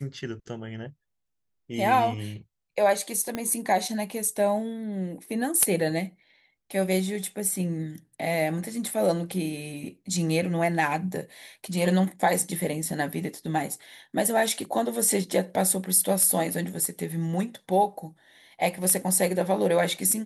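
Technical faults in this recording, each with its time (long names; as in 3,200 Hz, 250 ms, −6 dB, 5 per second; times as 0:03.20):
0:03.35: click −15 dBFS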